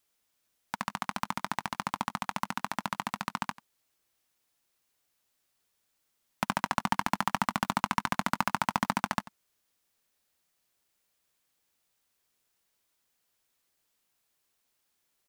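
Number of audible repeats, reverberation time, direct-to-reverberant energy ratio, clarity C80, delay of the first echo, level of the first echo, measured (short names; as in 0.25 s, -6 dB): 1, none, none, none, 91 ms, -18.5 dB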